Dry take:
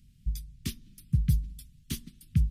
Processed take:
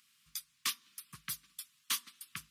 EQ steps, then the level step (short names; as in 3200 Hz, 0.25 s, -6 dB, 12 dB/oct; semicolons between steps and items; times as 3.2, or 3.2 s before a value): resonant high-pass 1100 Hz, resonance Q 6.1; +5.5 dB